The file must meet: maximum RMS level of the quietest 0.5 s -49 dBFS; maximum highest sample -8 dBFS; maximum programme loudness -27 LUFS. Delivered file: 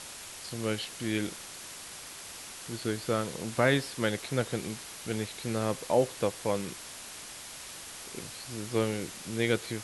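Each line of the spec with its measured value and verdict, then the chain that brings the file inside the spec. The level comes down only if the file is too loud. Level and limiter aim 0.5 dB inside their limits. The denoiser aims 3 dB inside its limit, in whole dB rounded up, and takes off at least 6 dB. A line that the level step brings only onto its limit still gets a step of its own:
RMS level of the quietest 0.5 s -45 dBFS: fail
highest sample -10.5 dBFS: OK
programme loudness -33.0 LUFS: OK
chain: denoiser 7 dB, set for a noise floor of -45 dBFS

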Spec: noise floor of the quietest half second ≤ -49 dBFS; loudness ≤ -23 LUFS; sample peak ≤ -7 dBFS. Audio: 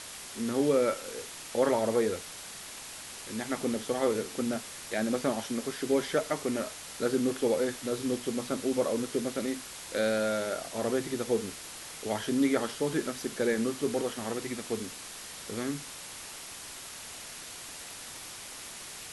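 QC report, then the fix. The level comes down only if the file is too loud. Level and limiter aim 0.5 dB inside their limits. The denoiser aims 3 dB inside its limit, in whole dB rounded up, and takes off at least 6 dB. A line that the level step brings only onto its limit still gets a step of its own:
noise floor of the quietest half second -44 dBFS: fail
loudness -32.0 LUFS: OK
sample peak -14.0 dBFS: OK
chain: denoiser 8 dB, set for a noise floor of -44 dBFS

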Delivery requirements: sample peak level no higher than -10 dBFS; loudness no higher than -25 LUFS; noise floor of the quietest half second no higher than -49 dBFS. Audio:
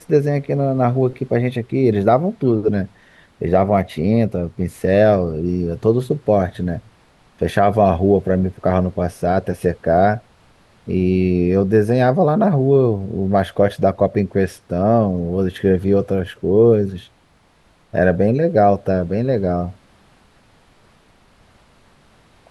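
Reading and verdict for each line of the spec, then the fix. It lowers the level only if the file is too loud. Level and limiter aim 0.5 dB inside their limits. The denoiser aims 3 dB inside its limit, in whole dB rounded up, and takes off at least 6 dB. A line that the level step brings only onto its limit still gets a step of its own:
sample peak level -2.5 dBFS: fail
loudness -17.5 LUFS: fail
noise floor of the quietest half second -55 dBFS: OK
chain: gain -8 dB

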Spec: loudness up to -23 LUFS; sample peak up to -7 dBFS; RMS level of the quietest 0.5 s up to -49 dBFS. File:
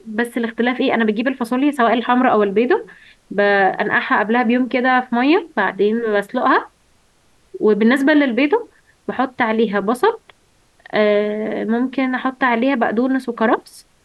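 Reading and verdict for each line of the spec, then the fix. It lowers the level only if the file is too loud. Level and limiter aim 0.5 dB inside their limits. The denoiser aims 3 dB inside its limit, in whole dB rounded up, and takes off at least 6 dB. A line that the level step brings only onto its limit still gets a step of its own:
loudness -17.0 LUFS: fail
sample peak -5.0 dBFS: fail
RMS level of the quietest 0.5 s -57 dBFS: OK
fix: gain -6.5 dB

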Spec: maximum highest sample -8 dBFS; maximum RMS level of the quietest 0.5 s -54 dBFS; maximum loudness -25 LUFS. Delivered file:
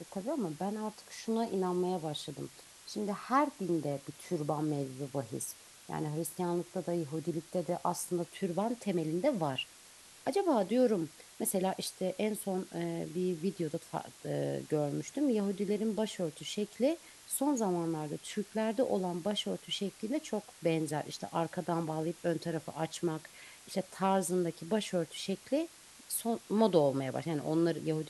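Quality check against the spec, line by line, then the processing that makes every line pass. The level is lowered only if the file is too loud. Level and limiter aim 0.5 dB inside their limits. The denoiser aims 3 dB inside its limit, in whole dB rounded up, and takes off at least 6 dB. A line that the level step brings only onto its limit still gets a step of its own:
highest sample -13.5 dBFS: OK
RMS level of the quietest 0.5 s -56 dBFS: OK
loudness -34.5 LUFS: OK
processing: none

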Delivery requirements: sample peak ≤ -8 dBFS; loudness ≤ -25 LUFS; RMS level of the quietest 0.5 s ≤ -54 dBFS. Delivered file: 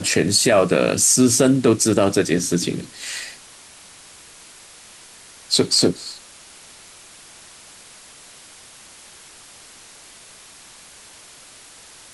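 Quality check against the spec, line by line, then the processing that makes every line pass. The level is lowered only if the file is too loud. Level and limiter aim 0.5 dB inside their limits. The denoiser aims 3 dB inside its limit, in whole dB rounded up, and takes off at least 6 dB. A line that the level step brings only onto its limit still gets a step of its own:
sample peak -5.0 dBFS: fail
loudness -17.5 LUFS: fail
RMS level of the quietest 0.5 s -45 dBFS: fail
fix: denoiser 6 dB, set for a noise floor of -45 dBFS; gain -8 dB

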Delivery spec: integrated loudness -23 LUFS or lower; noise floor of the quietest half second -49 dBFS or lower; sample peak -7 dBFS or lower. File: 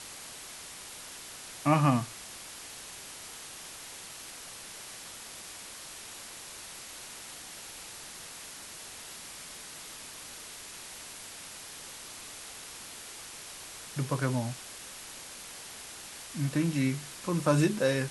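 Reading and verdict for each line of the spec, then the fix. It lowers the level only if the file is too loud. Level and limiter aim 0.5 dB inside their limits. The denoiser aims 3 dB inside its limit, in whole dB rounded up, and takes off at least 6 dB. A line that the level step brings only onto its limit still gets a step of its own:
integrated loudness -35.5 LUFS: OK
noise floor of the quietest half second -45 dBFS: fail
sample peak -11.0 dBFS: OK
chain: denoiser 7 dB, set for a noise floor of -45 dBFS

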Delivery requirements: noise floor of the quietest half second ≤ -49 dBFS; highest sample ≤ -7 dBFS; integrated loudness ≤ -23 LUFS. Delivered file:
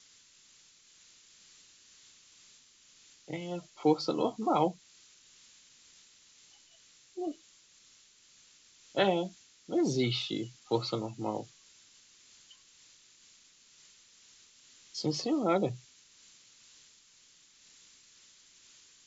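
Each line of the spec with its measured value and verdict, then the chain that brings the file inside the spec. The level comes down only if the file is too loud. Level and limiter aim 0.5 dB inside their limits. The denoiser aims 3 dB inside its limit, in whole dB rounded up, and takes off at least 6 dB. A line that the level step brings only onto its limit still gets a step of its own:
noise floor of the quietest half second -62 dBFS: OK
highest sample -13.5 dBFS: OK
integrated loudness -32.5 LUFS: OK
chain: none

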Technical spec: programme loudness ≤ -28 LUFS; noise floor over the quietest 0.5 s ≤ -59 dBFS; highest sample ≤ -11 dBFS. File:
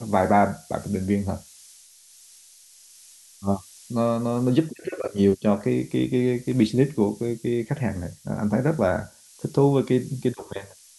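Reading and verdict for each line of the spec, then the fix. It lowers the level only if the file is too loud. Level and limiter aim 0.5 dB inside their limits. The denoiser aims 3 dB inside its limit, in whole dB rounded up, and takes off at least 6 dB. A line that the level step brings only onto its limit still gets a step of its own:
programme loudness -24.0 LUFS: fail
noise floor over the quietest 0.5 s -51 dBFS: fail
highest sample -6.5 dBFS: fail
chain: denoiser 7 dB, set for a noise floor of -51 dBFS; gain -4.5 dB; limiter -11.5 dBFS

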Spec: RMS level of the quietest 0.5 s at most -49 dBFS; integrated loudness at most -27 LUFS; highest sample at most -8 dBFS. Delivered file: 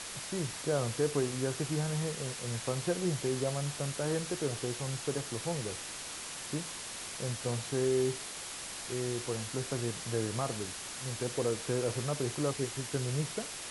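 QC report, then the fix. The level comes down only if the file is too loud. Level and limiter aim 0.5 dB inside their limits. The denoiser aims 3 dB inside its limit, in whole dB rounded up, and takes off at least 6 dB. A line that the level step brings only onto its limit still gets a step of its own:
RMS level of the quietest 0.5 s -42 dBFS: fail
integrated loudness -34.5 LUFS: OK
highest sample -18.5 dBFS: OK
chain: denoiser 10 dB, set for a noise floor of -42 dBFS

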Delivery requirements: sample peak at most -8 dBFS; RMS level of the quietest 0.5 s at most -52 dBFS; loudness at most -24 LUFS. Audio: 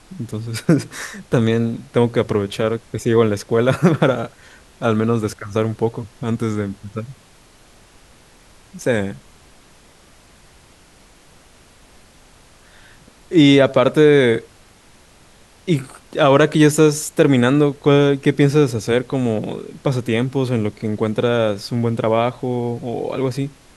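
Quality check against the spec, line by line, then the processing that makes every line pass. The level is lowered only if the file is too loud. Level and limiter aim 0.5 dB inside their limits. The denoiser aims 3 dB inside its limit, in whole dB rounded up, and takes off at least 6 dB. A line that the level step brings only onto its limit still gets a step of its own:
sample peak -2.0 dBFS: fail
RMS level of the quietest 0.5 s -49 dBFS: fail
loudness -18.0 LUFS: fail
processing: gain -6.5 dB

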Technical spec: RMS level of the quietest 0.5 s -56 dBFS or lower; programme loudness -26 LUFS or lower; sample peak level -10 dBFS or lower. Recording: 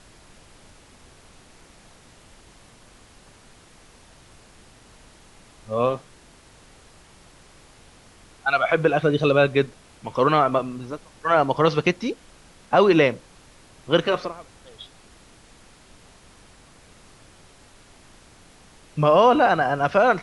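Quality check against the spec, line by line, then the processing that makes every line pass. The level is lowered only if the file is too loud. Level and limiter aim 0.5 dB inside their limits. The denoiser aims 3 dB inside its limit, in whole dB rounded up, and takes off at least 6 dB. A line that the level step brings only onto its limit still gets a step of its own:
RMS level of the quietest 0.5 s -51 dBFS: fail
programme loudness -20.5 LUFS: fail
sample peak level -4.5 dBFS: fail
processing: gain -6 dB

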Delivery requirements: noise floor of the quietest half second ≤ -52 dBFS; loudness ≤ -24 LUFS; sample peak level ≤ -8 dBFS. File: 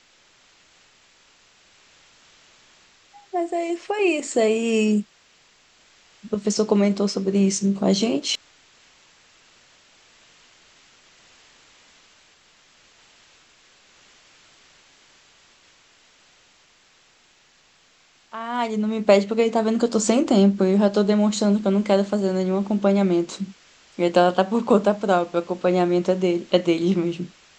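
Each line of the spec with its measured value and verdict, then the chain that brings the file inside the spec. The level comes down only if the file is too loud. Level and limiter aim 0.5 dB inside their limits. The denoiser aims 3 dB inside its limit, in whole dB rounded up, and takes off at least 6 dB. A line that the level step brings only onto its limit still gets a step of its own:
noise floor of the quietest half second -58 dBFS: OK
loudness -21.0 LUFS: fail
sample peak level -4.0 dBFS: fail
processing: gain -3.5 dB; limiter -8.5 dBFS

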